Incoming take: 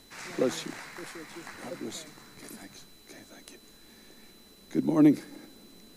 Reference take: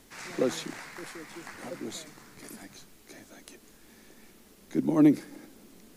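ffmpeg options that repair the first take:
ffmpeg -i in.wav -af "adeclick=threshold=4,bandreject=frequency=4000:width=30" out.wav

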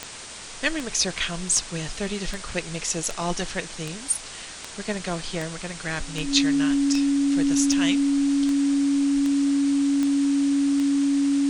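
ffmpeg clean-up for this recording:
ffmpeg -i in.wav -af "adeclick=threshold=4,bandreject=frequency=280:width=30,afwtdn=0.016" out.wav

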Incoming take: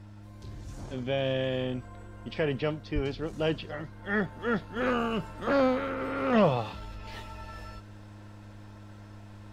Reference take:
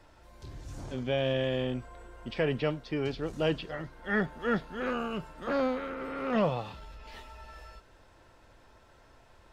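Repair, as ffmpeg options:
ffmpeg -i in.wav -filter_complex "[0:a]bandreject=frequency=103.2:width_type=h:width=4,bandreject=frequency=206.4:width_type=h:width=4,bandreject=frequency=309.6:width_type=h:width=4,asplit=3[link_01][link_02][link_03];[link_01]afade=type=out:start_time=2.94:duration=0.02[link_04];[link_02]highpass=frequency=140:width=0.5412,highpass=frequency=140:width=1.3066,afade=type=in:start_time=2.94:duration=0.02,afade=type=out:start_time=3.06:duration=0.02[link_05];[link_03]afade=type=in:start_time=3.06:duration=0.02[link_06];[link_04][link_05][link_06]amix=inputs=3:normalize=0,asetnsamples=nb_out_samples=441:pad=0,asendcmd='4.76 volume volume -4.5dB',volume=0dB" out.wav

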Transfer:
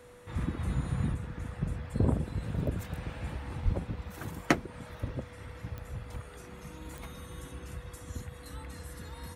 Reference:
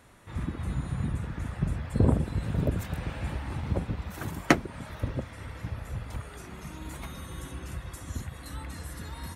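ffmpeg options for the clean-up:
ffmpeg -i in.wav -filter_complex "[0:a]adeclick=threshold=4,bandreject=frequency=490:width=30,asplit=3[link_01][link_02][link_03];[link_01]afade=type=out:start_time=3.64:duration=0.02[link_04];[link_02]highpass=frequency=140:width=0.5412,highpass=frequency=140:width=1.3066,afade=type=in:start_time=3.64:duration=0.02,afade=type=out:start_time=3.76:duration=0.02[link_05];[link_03]afade=type=in:start_time=3.76:duration=0.02[link_06];[link_04][link_05][link_06]amix=inputs=3:normalize=0,asetnsamples=nb_out_samples=441:pad=0,asendcmd='1.14 volume volume 4.5dB',volume=0dB" out.wav

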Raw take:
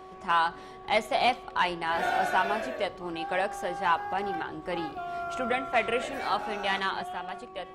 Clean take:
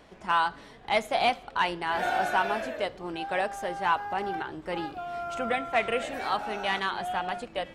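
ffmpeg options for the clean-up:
ffmpeg -i in.wav -af "bandreject=frequency=375.3:width_type=h:width=4,bandreject=frequency=750.6:width_type=h:width=4,bandreject=frequency=1125.9:width_type=h:width=4,asetnsamples=nb_out_samples=441:pad=0,asendcmd='7.03 volume volume 6dB',volume=0dB" out.wav

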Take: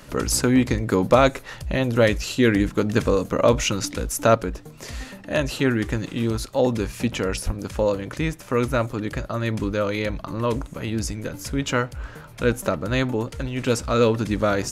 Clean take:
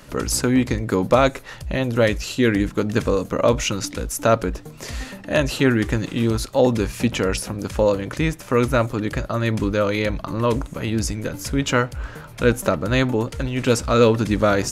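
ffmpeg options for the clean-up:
ffmpeg -i in.wav -filter_complex "[0:a]asplit=3[link_01][link_02][link_03];[link_01]afade=type=out:start_time=7.45:duration=0.02[link_04];[link_02]highpass=frequency=140:width=0.5412,highpass=frequency=140:width=1.3066,afade=type=in:start_time=7.45:duration=0.02,afade=type=out:start_time=7.57:duration=0.02[link_05];[link_03]afade=type=in:start_time=7.57:duration=0.02[link_06];[link_04][link_05][link_06]amix=inputs=3:normalize=0,asetnsamples=nb_out_samples=441:pad=0,asendcmd='4.35 volume volume 3.5dB',volume=0dB" out.wav

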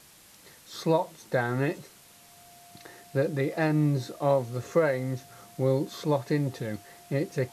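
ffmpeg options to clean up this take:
ffmpeg -i in.wav -af "bandreject=frequency=700:width=30,afwtdn=0.0022" out.wav

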